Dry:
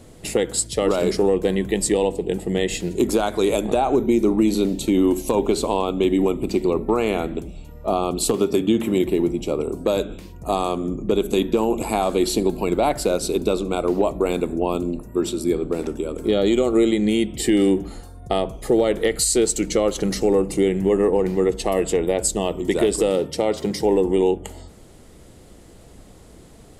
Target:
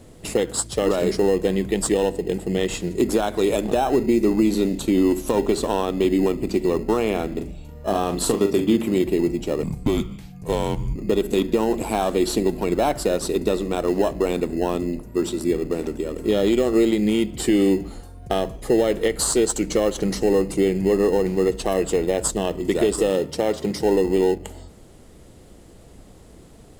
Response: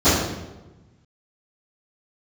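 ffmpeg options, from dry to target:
-filter_complex "[0:a]asettb=1/sr,asplit=3[link_01][link_02][link_03];[link_01]atrim=end=7.334[link_04];[link_02]atrim=start=7.33:end=8.76,asetpts=PTS-STARTPTS,afade=type=in:duration=0.004:curve=qsin,afade=type=out:start_time=1.426:duration=0.004:curve=qsin,asplit=2[link_05][link_06];[link_06]adelay=40,volume=-7dB[link_07];[link_05][link_07]amix=inputs=2:normalize=0,atrim=end_sample=63063[link_08];[link_03]atrim=start=8.756[link_09];[link_04][link_08]acrossfade=duration=0.004:curve1=hsin:curve2=qsin[link_10];[link_10][link_09]acrossfade=duration=0.004:curve1=qsin:curve2=hsin,asettb=1/sr,asplit=3[link_11][link_12][link_13];[link_11]atrim=end=9.634[link_14];[link_12]atrim=start=9.63:end=10.96,asetpts=PTS-STARTPTS,afade=type=in:duration=0.004:curve=qsin,afade=type=out:start_time=1.326:duration=0.004:curve=qsin,afreqshift=-230[link_15];[link_13]atrim=start=10.956[link_16];[link_14][link_15]acrossfade=duration=0.004:curve1=hsin:curve2=qsin[link_17];[link_17][link_16]acrossfade=duration=0.004:curve1=qsin:curve2=hsin,asplit=2[link_18][link_19];[link_19]acrusher=samples=19:mix=1:aa=0.000001,volume=-11dB[link_20];[link_18][link_20]amix=inputs=2:normalize=0,volume=-2.5dB"

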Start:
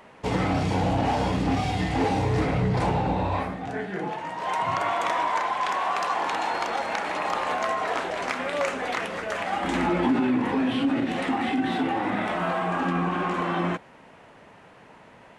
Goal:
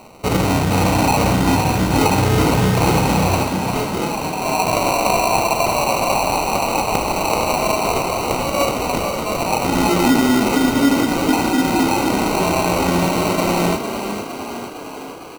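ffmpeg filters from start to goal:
ffmpeg -i in.wav -filter_complex "[0:a]acrusher=samples=26:mix=1:aa=0.000001,asplit=9[link_01][link_02][link_03][link_04][link_05][link_06][link_07][link_08][link_09];[link_02]adelay=457,afreqshift=31,volume=-8dB[link_10];[link_03]adelay=914,afreqshift=62,volume=-12dB[link_11];[link_04]adelay=1371,afreqshift=93,volume=-16dB[link_12];[link_05]adelay=1828,afreqshift=124,volume=-20dB[link_13];[link_06]adelay=2285,afreqshift=155,volume=-24.1dB[link_14];[link_07]adelay=2742,afreqshift=186,volume=-28.1dB[link_15];[link_08]adelay=3199,afreqshift=217,volume=-32.1dB[link_16];[link_09]adelay=3656,afreqshift=248,volume=-36.1dB[link_17];[link_01][link_10][link_11][link_12][link_13][link_14][link_15][link_16][link_17]amix=inputs=9:normalize=0,volume=7.5dB" out.wav

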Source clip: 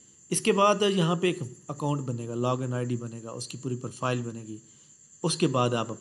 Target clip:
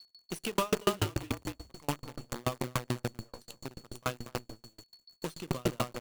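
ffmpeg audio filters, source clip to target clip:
ffmpeg -i in.wav -filter_complex "[0:a]asplit=2[link_01][link_02];[link_02]adelay=236,lowpass=frequency=1400:poles=1,volume=-4dB,asplit=2[link_03][link_04];[link_04]adelay=236,lowpass=frequency=1400:poles=1,volume=0.15,asplit=2[link_05][link_06];[link_06]adelay=236,lowpass=frequency=1400:poles=1,volume=0.15[link_07];[link_03][link_05][link_07]amix=inputs=3:normalize=0[link_08];[link_01][link_08]amix=inputs=2:normalize=0,acrusher=bits=5:dc=4:mix=0:aa=0.000001,asettb=1/sr,asplit=3[link_09][link_10][link_11];[link_09]atrim=end=0.994[link_12];[link_10]atrim=start=0.99:end=1.72,asetpts=PTS-STARTPTS,afade=type=in:duration=0.004:curve=qsin,afade=type=out:start_time=0.726:duration=0.004:curve=qsin,afreqshift=-60[link_13];[link_11]atrim=start=1.716[link_14];[link_12][link_13]acrossfade=duration=0.004:curve1=hsin:curve2=qsin[link_15];[link_15][link_14]acrossfade=duration=0.004:curve1=qsin:curve2=hsin,aeval=exprs='val(0)+0.00447*sin(2*PI*4400*n/s)':channel_layout=same,aeval=exprs='val(0)*pow(10,-38*if(lt(mod(6.9*n/s,1),2*abs(6.9)/1000),1-mod(6.9*n/s,1)/(2*abs(6.9)/1000),(mod(6.9*n/s,1)-2*abs(6.9)/1000)/(1-2*abs(6.9)/1000))/20)':channel_layout=same" out.wav

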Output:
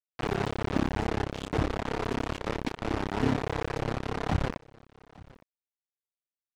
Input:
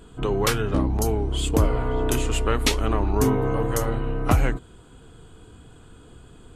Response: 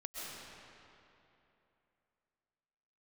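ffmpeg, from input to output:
-filter_complex "[0:a]highpass=frequency=140:poles=1,equalizer=frequency=790:width_type=o:width=0.65:gain=11,bandreject=frequency=60:width_type=h:width=6,bandreject=frequency=120:width_type=h:width=6,bandreject=frequency=180:width_type=h:width=6,bandreject=frequency=240:width_type=h:width=6,bandreject=frequency=300:width_type=h:width=6,bandreject=frequency=360:width_type=h:width=6,bandreject=frequency=420:width_type=h:width=6,bandreject=frequency=480:width_type=h:width=6,bandreject=frequency=540:width_type=h:width=6,asettb=1/sr,asplit=3[link_01][link_02][link_03];[link_01]atrim=end=3.364[link_04];[link_02]atrim=start=3.36:end=3.81,asetpts=PTS-STARTPTS,afade=type=in:duration=0.004:curve=qsin,afade=type=out:start_time=0.446:duration=0.004:curve=qsin,equalizer=frequency=190:width_type=o:width=0.72:gain=-10[link_05];[link_03]atrim=start=3.806[link_06];[link_04][link_05]acrossfade=duration=0.004:curve1=hsin:curve2=qsin[link_07];[link_07][link_06]acrossfade=duration=0.004:curve1=qsin:curve2=hsin,acrossover=split=340[link_08][link_09];[link_08]tremolo=f=34:d=0.889[link_10];[link_09]acompressor=threshold=-36dB:ratio=20[link_11];[link_10][link_11]amix=inputs=2:normalize=0,acrusher=bits=4:mix=0:aa=0.000001,adynamicsmooth=sensitivity=1.5:basefreq=2800,aecho=1:1:862:0.0708,volume=2dB"

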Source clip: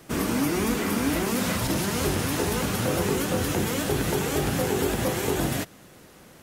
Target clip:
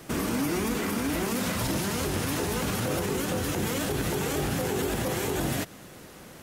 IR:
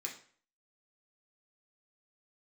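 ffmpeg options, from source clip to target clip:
-af "alimiter=limit=-23dB:level=0:latency=1:release=96,volume=3.5dB"

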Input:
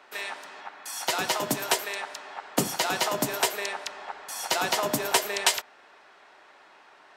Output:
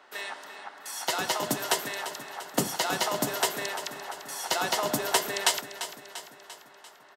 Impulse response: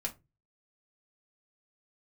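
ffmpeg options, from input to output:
-filter_complex "[0:a]bandreject=frequency=2400:width=9.8,asplit=2[link_01][link_02];[link_02]aecho=0:1:344|688|1032|1376|1720|2064:0.251|0.138|0.076|0.0418|0.023|0.0126[link_03];[link_01][link_03]amix=inputs=2:normalize=0,volume=-1.5dB"

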